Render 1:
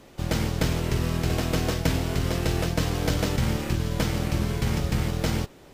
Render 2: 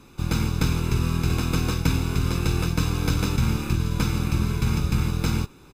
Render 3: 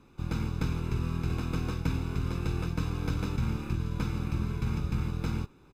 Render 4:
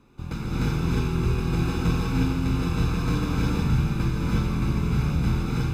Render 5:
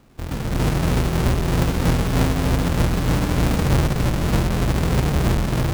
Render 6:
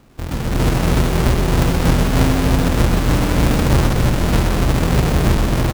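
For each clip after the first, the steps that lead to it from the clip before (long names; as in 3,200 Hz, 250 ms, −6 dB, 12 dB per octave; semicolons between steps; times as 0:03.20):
comb filter 0.8 ms, depth 74%; level −1.5 dB
high-shelf EQ 3,700 Hz −11 dB; level −7.5 dB
reverb whose tail is shaped and stops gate 380 ms rising, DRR −7 dB
each half-wave held at its own peak
single-tap delay 126 ms −6.5 dB; level +3.5 dB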